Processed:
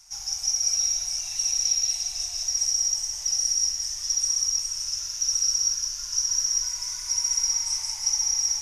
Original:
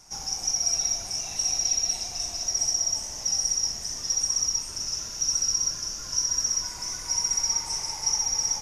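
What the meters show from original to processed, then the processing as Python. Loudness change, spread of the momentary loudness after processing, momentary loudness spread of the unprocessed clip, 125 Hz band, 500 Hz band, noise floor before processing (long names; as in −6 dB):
+1.5 dB, 6 LU, 6 LU, can't be measured, below −10 dB, −37 dBFS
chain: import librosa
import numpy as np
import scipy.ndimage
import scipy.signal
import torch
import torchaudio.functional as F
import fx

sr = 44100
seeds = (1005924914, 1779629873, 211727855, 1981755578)

p1 = fx.tone_stack(x, sr, knobs='10-0-10')
p2 = p1 + fx.echo_single(p1, sr, ms=166, db=-5.5, dry=0)
y = p2 * 10.0 ** (1.5 / 20.0)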